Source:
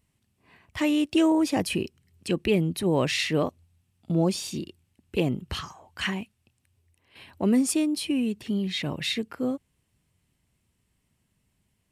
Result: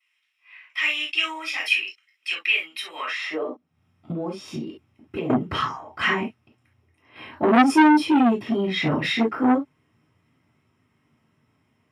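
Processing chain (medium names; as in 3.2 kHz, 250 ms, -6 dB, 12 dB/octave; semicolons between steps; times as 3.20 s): reverberation, pre-delay 3 ms, DRR -14.5 dB; high-pass sweep 2.5 kHz -> 97 Hz, 2.96–3.81 s; bass shelf 170 Hz +6.5 dB; 2.92–5.30 s: compression 5:1, threshold -22 dBFS, peak gain reduction 19.5 dB; transformer saturation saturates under 1.2 kHz; trim -6 dB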